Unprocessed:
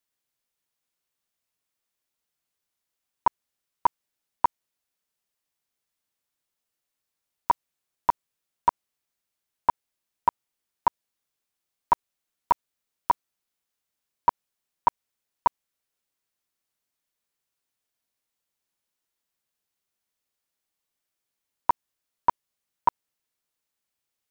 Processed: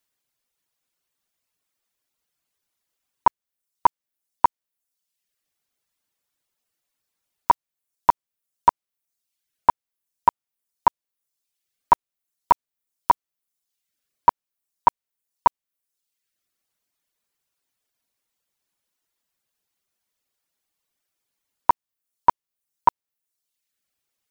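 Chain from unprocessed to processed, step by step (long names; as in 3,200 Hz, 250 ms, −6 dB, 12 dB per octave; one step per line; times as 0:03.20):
reverb reduction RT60 0.79 s
level +5.5 dB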